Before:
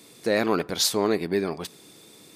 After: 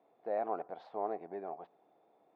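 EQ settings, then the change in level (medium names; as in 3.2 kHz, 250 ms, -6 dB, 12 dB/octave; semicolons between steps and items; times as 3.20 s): band-pass filter 730 Hz, Q 6; distance through air 410 m; +1.0 dB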